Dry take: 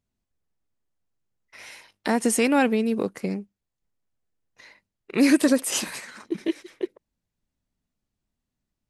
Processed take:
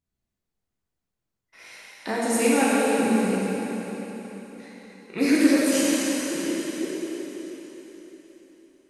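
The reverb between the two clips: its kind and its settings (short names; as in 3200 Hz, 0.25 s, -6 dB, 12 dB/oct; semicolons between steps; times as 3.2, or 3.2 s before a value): plate-style reverb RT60 4.2 s, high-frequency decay 0.95×, DRR -8 dB; gain -7 dB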